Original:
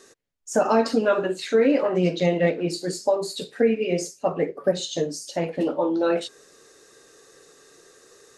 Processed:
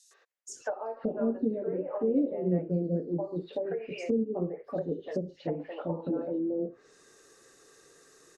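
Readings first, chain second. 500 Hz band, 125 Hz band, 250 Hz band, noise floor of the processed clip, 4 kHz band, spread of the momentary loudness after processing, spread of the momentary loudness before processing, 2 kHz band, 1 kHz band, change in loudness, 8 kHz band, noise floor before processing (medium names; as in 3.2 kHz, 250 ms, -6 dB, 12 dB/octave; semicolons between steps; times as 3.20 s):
-9.5 dB, -4.5 dB, -5.5 dB, -63 dBFS, -21.0 dB, 7 LU, 8 LU, -16.0 dB, -14.5 dB, -9.0 dB, under -15 dB, -55 dBFS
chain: three bands offset in time highs, mids, lows 110/490 ms, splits 560/3700 Hz; low-pass that closes with the level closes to 470 Hz, closed at -22 dBFS; trim -4.5 dB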